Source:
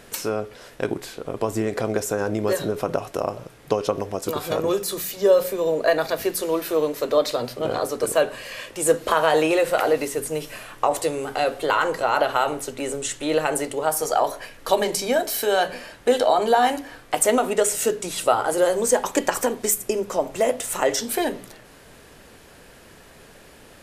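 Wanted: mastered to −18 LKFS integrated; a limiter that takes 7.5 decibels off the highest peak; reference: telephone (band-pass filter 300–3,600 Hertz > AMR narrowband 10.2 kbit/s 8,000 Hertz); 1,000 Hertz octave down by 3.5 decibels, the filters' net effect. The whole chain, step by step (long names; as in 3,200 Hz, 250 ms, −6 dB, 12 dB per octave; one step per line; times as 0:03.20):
parametric band 1,000 Hz −5 dB
brickwall limiter −14 dBFS
band-pass filter 300–3,600 Hz
level +10 dB
AMR narrowband 10.2 kbit/s 8,000 Hz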